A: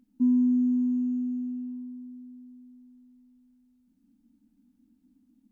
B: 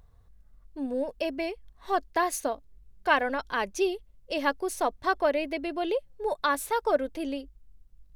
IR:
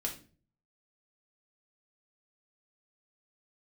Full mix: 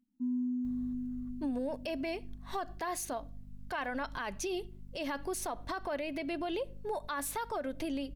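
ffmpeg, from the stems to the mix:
-filter_complex "[0:a]volume=0.2,asplit=2[s0][s1];[s1]volume=0.188[s2];[1:a]aeval=exprs='val(0)+0.00282*(sin(2*PI*50*n/s)+sin(2*PI*2*50*n/s)/2+sin(2*PI*3*50*n/s)/3+sin(2*PI*4*50*n/s)/4+sin(2*PI*5*50*n/s)/5)':c=same,adelay=650,volume=1.33,asplit=2[s3][s4];[s4]volume=0.1[s5];[2:a]atrim=start_sample=2205[s6];[s2][s5]amix=inputs=2:normalize=0[s7];[s7][s6]afir=irnorm=-1:irlink=0[s8];[s0][s3][s8]amix=inputs=3:normalize=0,equalizer=f=460:w=3:g=-7,alimiter=level_in=1.58:limit=0.0631:level=0:latency=1:release=81,volume=0.631"

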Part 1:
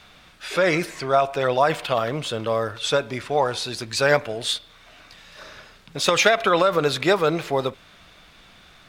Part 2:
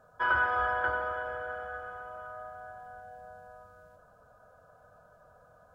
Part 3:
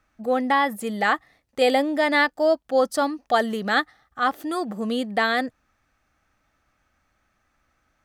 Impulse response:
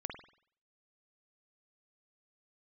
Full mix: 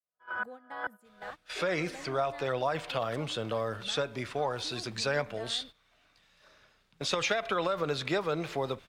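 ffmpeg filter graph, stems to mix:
-filter_complex "[0:a]acrossover=split=8000[s0][s1];[s1]acompressor=threshold=0.00224:ratio=4:attack=1:release=60[s2];[s0][s2]amix=inputs=2:normalize=0,adelay=1050,volume=0.531[s3];[1:a]highpass=f=140:w=0.5412,highpass=f=140:w=1.3066,aeval=exprs='val(0)*pow(10,-34*if(lt(mod(-2.3*n/s,1),2*abs(-2.3)/1000),1-mod(-2.3*n/s,1)/(2*abs(-2.3)/1000),(mod(-2.3*n/s,1)-2*abs(-2.3)/1000)/(1-2*abs(-2.3)/1000))/20)':c=same,volume=0.75[s4];[2:a]acompressor=threshold=0.02:ratio=2.5,adelay=200,volume=0.188[s5];[s3][s4][s5]amix=inputs=3:normalize=0,agate=range=0.224:threshold=0.00794:ratio=16:detection=peak,acrossover=split=120[s6][s7];[s7]acompressor=threshold=0.0282:ratio=2[s8];[s6][s8]amix=inputs=2:normalize=0"

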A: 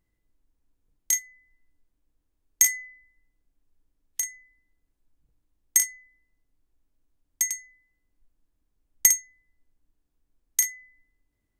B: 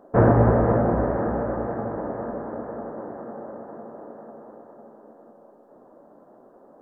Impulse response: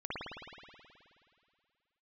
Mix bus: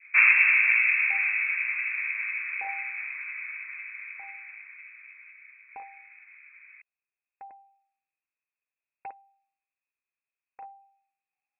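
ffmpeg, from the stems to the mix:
-filter_complex "[0:a]acontrast=49,volume=0.237[s0];[1:a]adynamicequalizer=threshold=0.00562:dfrequency=1800:dqfactor=1.5:tfrequency=1800:tqfactor=1.5:attack=5:release=100:ratio=0.375:range=4:mode=cutabove:tftype=bell,volume=1[s1];[s0][s1]amix=inputs=2:normalize=0,highpass=220,lowpass=f=2400:t=q:w=0.5098,lowpass=f=2400:t=q:w=0.6013,lowpass=f=2400:t=q:w=0.9,lowpass=f=2400:t=q:w=2.563,afreqshift=-2800"

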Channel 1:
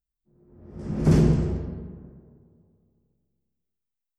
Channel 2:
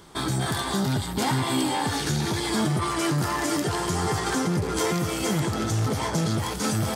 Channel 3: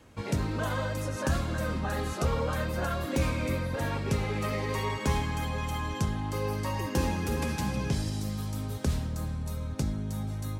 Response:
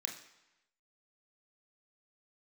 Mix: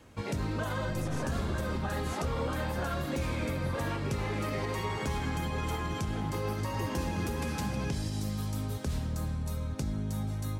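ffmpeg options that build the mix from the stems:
-filter_complex "[0:a]aeval=exprs='(tanh(25.1*val(0)+0.75)-tanh(0.75))/25.1':c=same,asplit=2[s0][s1];[s1]adelay=3.3,afreqshift=-1.1[s2];[s0][s2]amix=inputs=2:normalize=1,volume=1.26[s3];[1:a]acrossover=split=3500[s4][s5];[s5]acompressor=threshold=0.00447:ratio=4:attack=1:release=60[s6];[s4][s6]amix=inputs=2:normalize=0,adelay=900,volume=0.211[s7];[2:a]volume=1[s8];[s3][s7][s8]amix=inputs=3:normalize=0,alimiter=limit=0.0668:level=0:latency=1:release=123"

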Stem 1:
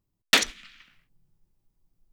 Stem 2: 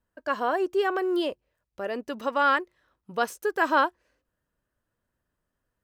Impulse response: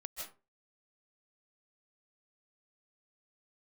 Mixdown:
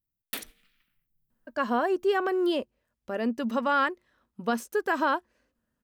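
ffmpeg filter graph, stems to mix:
-filter_complex "[0:a]lowshelf=f=480:g=8,bandreject=f=154.5:t=h:w=4,bandreject=f=309:t=h:w=4,bandreject=f=463.5:t=h:w=4,bandreject=f=618:t=h:w=4,bandreject=f=772.5:t=h:w=4,aexciter=amount=10.3:drive=3.9:freq=9300,volume=0.106[s0];[1:a]equalizer=f=230:t=o:w=0.26:g=14.5,adelay=1300,volume=0.944[s1];[s0][s1]amix=inputs=2:normalize=0,alimiter=limit=0.168:level=0:latency=1:release=111"

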